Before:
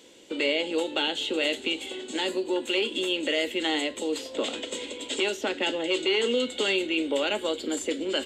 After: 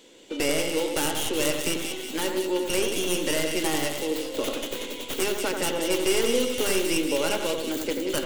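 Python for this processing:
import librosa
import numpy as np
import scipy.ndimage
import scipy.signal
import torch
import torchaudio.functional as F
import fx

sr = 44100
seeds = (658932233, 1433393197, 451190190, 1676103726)

y = fx.tracing_dist(x, sr, depth_ms=0.27)
y = fx.echo_split(y, sr, split_hz=2100.0, low_ms=88, high_ms=185, feedback_pct=52, wet_db=-5)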